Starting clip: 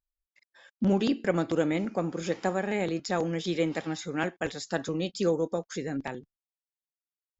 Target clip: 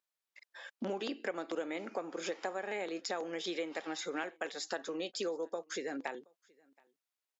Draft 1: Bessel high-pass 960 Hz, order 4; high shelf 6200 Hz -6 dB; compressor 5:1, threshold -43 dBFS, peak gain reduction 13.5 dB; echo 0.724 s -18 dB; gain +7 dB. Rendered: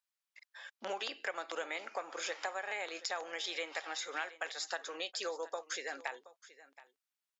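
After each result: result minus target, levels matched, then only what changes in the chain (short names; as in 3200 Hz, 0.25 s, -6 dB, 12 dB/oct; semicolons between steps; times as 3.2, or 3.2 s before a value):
echo-to-direct +10.5 dB; 500 Hz band -4.0 dB
change: echo 0.724 s -28.5 dB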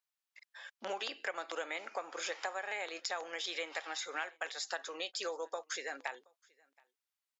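500 Hz band -4.0 dB
change: Bessel high-pass 450 Hz, order 4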